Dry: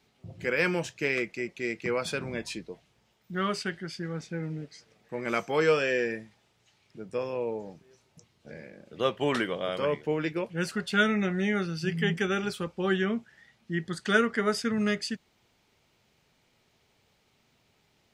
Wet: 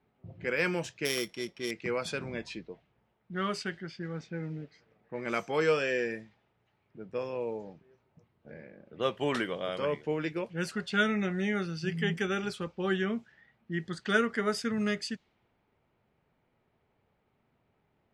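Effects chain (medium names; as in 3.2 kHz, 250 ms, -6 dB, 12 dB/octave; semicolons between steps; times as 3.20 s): 1.05–1.71 s: sorted samples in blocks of 8 samples; level-controlled noise filter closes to 1.5 kHz, open at -25.5 dBFS; trim -3 dB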